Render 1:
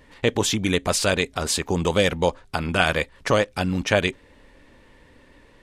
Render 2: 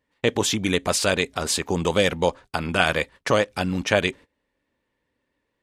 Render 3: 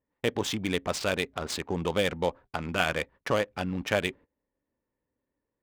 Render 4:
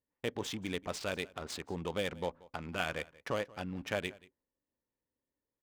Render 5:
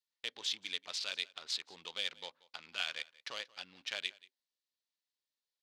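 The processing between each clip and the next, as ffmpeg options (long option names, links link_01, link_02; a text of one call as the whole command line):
ffmpeg -i in.wav -af "agate=range=-22dB:threshold=-39dB:ratio=16:detection=peak,highpass=frequency=100:poles=1" out.wav
ffmpeg -i in.wav -af "adynamicsmooth=sensitivity=3:basefreq=1400,volume=-6.5dB" out.wav
ffmpeg -i in.wav -af "aecho=1:1:182:0.0794,volume=-8.5dB" out.wav
ffmpeg -i in.wav -af "bandpass=frequency=4100:width_type=q:width=2.4:csg=0,volume=9.5dB" out.wav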